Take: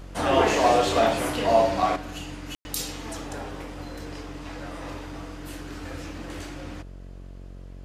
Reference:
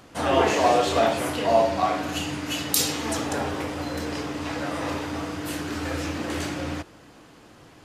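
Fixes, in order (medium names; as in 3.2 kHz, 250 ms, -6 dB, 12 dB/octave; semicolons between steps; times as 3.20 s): de-hum 45.7 Hz, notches 15; room tone fill 2.55–2.65 s; gain correction +8.5 dB, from 1.96 s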